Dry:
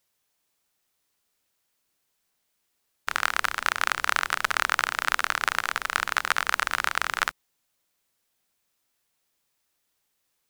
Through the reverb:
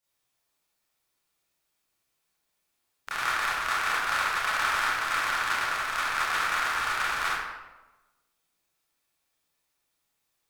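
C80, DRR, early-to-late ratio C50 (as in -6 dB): 1.0 dB, -11.0 dB, -2.0 dB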